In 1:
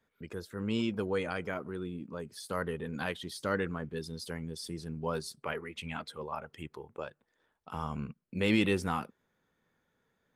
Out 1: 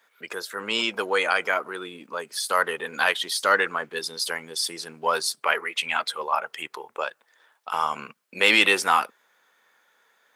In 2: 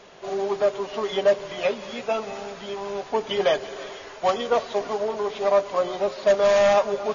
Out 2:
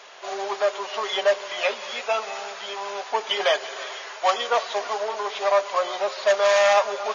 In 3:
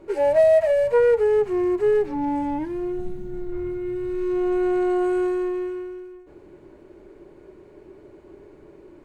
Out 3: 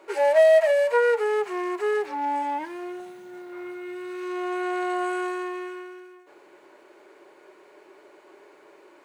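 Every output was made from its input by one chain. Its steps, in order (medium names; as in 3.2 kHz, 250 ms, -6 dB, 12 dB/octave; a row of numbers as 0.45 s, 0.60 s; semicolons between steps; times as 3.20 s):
in parallel at -11 dB: saturation -21.5 dBFS; on the sum: high-pass 820 Hz 12 dB/octave; normalise loudness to -24 LUFS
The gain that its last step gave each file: +14.5 dB, +4.0 dB, +4.5 dB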